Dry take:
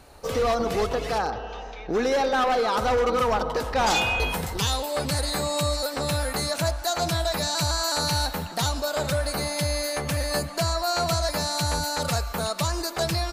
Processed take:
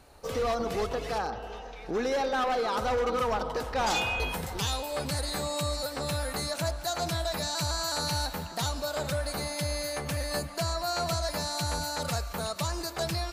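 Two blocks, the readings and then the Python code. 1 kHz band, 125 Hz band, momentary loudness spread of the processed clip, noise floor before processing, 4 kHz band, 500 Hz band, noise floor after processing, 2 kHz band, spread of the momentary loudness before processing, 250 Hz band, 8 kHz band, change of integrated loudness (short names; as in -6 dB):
-5.5 dB, -5.5 dB, 5 LU, -38 dBFS, -5.5 dB, -5.5 dB, -43 dBFS, -5.5 dB, 5 LU, -5.5 dB, -5.5 dB, -5.5 dB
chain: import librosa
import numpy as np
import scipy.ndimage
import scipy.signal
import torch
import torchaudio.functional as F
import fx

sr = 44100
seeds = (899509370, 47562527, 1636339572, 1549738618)

y = x + 10.0 ** (-18.5 / 20.0) * np.pad(x, (int(722 * sr / 1000.0), 0))[:len(x)]
y = y * 10.0 ** (-5.5 / 20.0)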